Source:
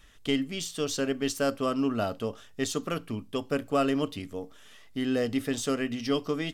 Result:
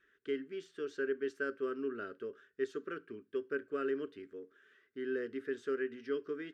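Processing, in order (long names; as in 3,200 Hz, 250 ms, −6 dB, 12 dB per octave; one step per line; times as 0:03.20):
pair of resonant band-passes 780 Hz, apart 2 octaves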